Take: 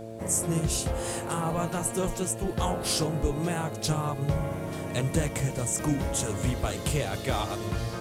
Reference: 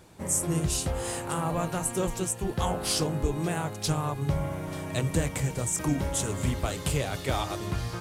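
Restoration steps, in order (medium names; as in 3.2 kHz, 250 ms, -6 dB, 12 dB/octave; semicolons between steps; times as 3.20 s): de-click; de-hum 112.2 Hz, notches 6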